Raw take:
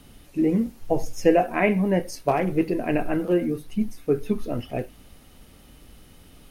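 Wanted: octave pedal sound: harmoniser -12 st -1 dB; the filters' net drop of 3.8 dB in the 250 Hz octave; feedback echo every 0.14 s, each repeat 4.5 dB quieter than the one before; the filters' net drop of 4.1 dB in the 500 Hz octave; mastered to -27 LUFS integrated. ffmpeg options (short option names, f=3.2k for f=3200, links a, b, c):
-filter_complex "[0:a]equalizer=f=250:t=o:g=-4,equalizer=f=500:t=o:g=-4,aecho=1:1:140|280|420|560|700|840|980|1120|1260:0.596|0.357|0.214|0.129|0.0772|0.0463|0.0278|0.0167|0.01,asplit=2[a][b];[b]asetrate=22050,aresample=44100,atempo=2,volume=-1dB[c];[a][c]amix=inputs=2:normalize=0,volume=-3dB"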